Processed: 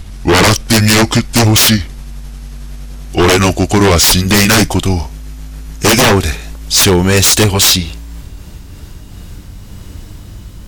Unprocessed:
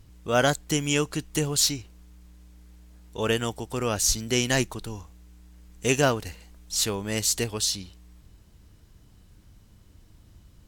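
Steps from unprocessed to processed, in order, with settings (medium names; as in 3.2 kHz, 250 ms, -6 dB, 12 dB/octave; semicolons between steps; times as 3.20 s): pitch bend over the whole clip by -5.5 st ending unshifted; sine folder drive 17 dB, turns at -8 dBFS; trim +3.5 dB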